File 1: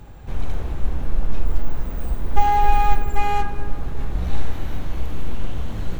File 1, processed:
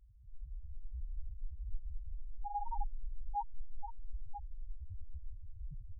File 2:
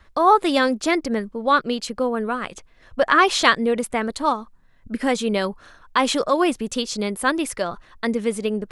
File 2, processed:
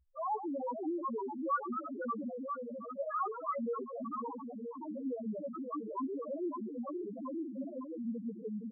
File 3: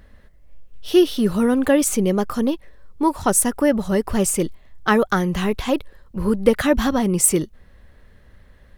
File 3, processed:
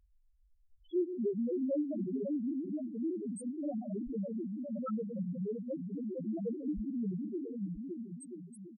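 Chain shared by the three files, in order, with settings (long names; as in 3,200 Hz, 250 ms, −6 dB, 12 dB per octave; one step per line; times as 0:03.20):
echo with a time of its own for lows and highs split 340 Hz, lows 175 ms, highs 117 ms, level −12 dB
tube saturation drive 14 dB, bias 0.55
low-shelf EQ 84 Hz −3 dB
on a send: bouncing-ball delay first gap 560 ms, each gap 0.75×, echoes 5
on the sum: delay with pitch and tempo change per echo 401 ms, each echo +2 semitones, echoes 2
spectral peaks only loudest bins 1
dynamic equaliser 1,200 Hz, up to +5 dB, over −49 dBFS, Q 3.8
level −7.5 dB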